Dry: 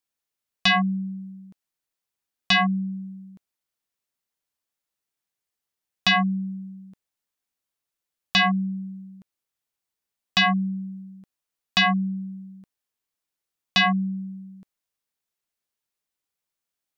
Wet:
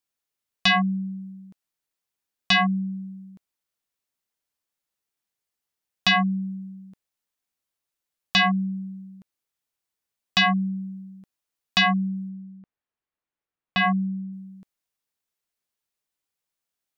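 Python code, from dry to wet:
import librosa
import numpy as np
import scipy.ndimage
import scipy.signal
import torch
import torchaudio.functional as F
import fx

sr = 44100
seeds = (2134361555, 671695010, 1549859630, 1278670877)

y = fx.lowpass(x, sr, hz=2200.0, slope=12, at=(12.29, 14.33))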